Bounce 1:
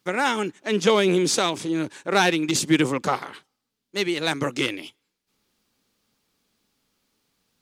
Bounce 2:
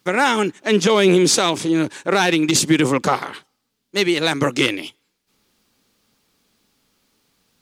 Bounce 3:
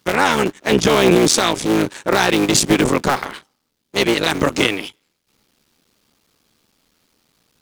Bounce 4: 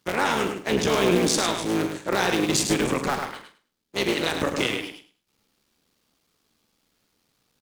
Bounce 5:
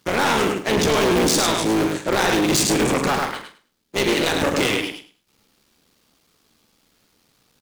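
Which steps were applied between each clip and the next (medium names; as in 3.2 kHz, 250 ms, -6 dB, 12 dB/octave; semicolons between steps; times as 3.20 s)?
loudness maximiser +11 dB; trim -4 dB
cycle switcher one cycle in 3, muted; in parallel at -6.5 dB: hard clipper -13 dBFS, distortion -11 dB
doubling 45 ms -11 dB; on a send: feedback delay 104 ms, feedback 17%, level -6.5 dB; on the sum: trim -8.5 dB
hard clipper -23 dBFS, distortion -8 dB; trim +8 dB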